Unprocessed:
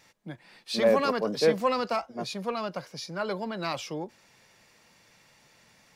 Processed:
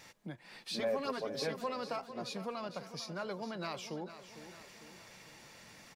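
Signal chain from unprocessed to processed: 0.79–1.64 s: comb 7.5 ms, depth 83%; compression 2:1, threshold -52 dBFS, peak gain reduction 19.5 dB; on a send: feedback delay 451 ms, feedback 53%, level -12.5 dB; on the sum: trim +4 dB

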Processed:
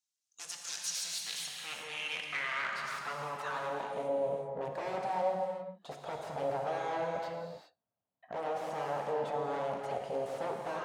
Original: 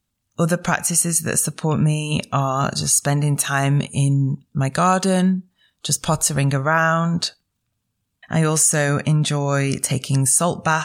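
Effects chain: wavefolder -20.5 dBFS; gated-style reverb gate 430 ms flat, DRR 0.5 dB; band-pass sweep 6 kHz -> 660 Hz, 0.64–4.16 s; trim -3.5 dB

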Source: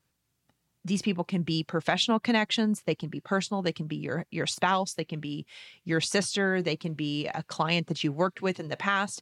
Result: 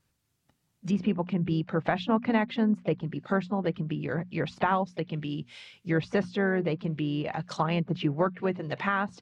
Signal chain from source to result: harmony voices +3 st -15 dB; low-pass that closes with the level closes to 1.7 kHz, closed at -25.5 dBFS; bass shelf 97 Hz +9.5 dB; hum notches 60/120/180/240 Hz

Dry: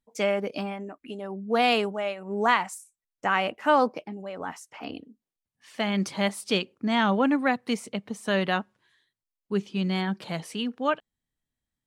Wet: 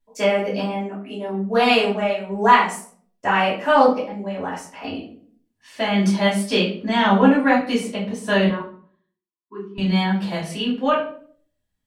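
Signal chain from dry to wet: 8.48–9.78 s: two resonant band-passes 600 Hz, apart 1.6 oct; reverberation RT60 0.55 s, pre-delay 3 ms, DRR -8 dB; trim -4 dB

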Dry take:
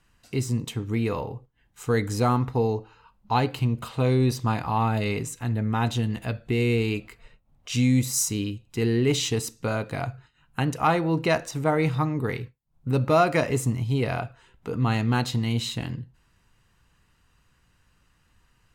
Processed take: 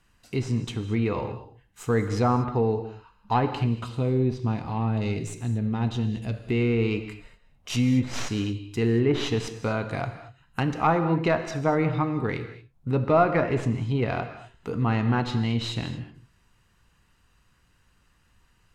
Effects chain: tracing distortion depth 0.11 ms; low-pass that closes with the level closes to 1.8 kHz, closed at -17.5 dBFS; 3.86–6.34 s: peaking EQ 1.3 kHz -10.5 dB 2.1 oct; gated-style reverb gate 260 ms flat, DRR 9 dB

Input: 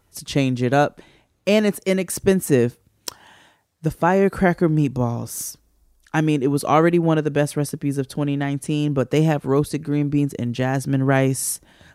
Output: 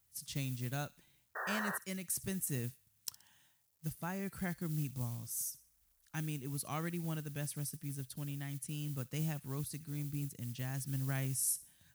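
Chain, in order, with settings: painted sound noise, 1.35–1.78 s, 370–1900 Hz -16 dBFS; FFT filter 130 Hz 0 dB, 430 Hz -24 dB, 1.9 kHz -19 dB; companded quantiser 8-bit; RIAA curve recording; on a send: feedback echo behind a high-pass 62 ms, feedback 40%, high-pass 2 kHz, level -17.5 dB; on the sum: trim -3.5 dB

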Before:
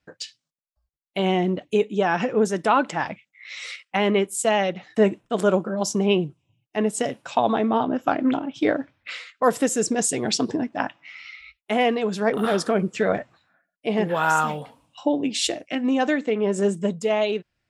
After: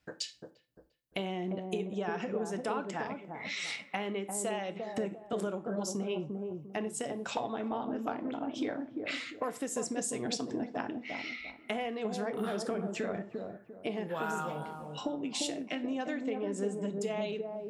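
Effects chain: treble shelf 8.4 kHz +5 dB; compression 6:1, threshold -34 dBFS, peak gain reduction 19.5 dB; feedback echo behind a low-pass 348 ms, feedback 30%, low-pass 790 Hz, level -3 dB; on a send at -12.5 dB: reverberation RT60 0.35 s, pre-delay 22 ms

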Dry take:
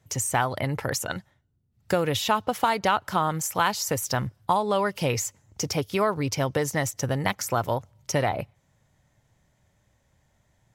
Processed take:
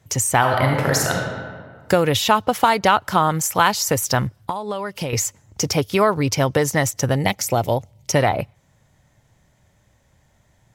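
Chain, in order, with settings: 0.38–1.17 s: reverb throw, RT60 1.7 s, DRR 0 dB; 4.26–5.13 s: compression 8:1, threshold -30 dBFS, peak gain reduction 12.5 dB; 7.16–8.10 s: high-order bell 1.3 kHz -9.5 dB 1 oct; trim +7 dB

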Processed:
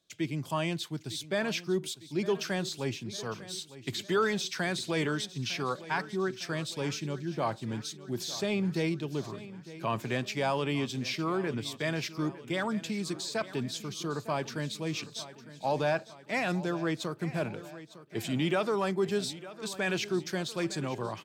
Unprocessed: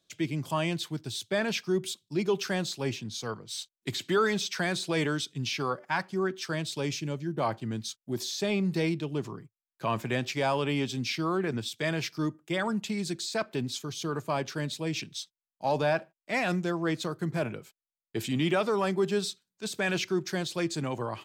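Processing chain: feedback delay 905 ms, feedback 55%, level -16 dB; trim -2 dB

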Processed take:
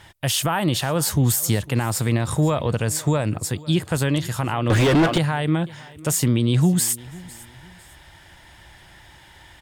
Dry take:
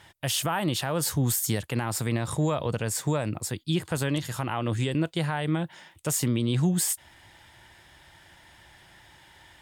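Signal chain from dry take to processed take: bass shelf 69 Hz +10 dB; feedback delay 502 ms, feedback 33%, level -21 dB; 4.70–5.18 s: overdrive pedal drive 36 dB, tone 1.7 kHz, clips at -14 dBFS; trim +5 dB

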